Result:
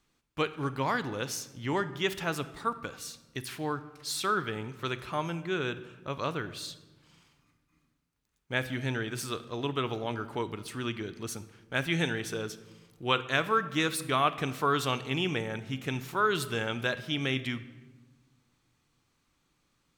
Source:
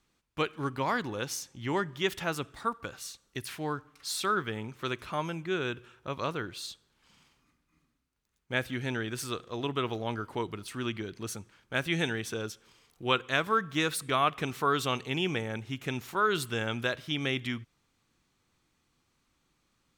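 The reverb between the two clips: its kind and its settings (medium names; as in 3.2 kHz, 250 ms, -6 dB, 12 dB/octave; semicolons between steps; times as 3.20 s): simulated room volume 810 m³, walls mixed, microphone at 0.38 m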